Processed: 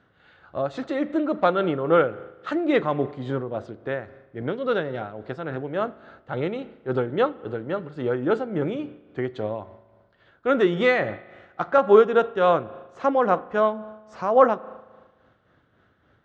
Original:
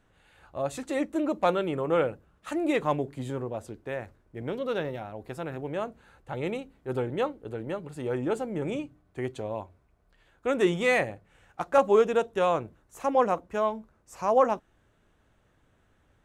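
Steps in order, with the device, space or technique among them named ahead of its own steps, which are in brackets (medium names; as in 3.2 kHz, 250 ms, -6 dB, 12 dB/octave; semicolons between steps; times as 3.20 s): combo amplifier with spring reverb and tremolo (spring tank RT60 1.4 s, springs 37 ms, chirp 55 ms, DRR 16.5 dB; tremolo 3.6 Hz, depth 45%; cabinet simulation 99–4400 Hz, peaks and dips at 900 Hz -4 dB, 1.4 kHz +5 dB, 2.5 kHz -7 dB); trim +7 dB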